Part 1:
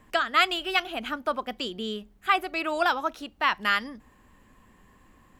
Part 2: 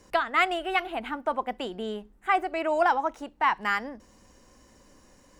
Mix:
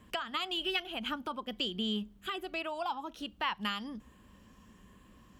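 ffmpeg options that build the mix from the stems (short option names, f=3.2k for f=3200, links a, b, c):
-filter_complex "[0:a]equalizer=f=200:t=o:w=0.33:g=7,equalizer=f=800:t=o:w=0.33:g=-7,equalizer=f=2k:t=o:w=0.33:g=-5,equalizer=f=3.15k:t=o:w=0.33:g=7,volume=-2.5dB[a];[1:a]asplit=2[b][c];[c]afreqshift=1.2[d];[b][d]amix=inputs=2:normalize=1,volume=-11.5dB,asplit=2[e][f];[f]apad=whole_len=237825[g];[a][g]sidechaincompress=threshold=-47dB:ratio=12:attack=45:release=257[h];[h][e]amix=inputs=2:normalize=0,highpass=48,lowshelf=f=68:g=8"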